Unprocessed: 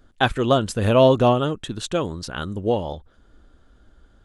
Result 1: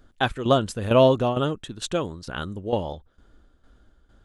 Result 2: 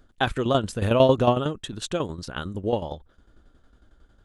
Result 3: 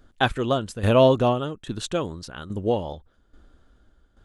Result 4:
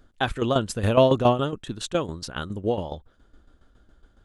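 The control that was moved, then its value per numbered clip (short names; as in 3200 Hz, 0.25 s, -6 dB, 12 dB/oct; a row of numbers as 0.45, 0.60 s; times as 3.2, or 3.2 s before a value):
tremolo, rate: 2.2, 11, 1.2, 7.2 Hz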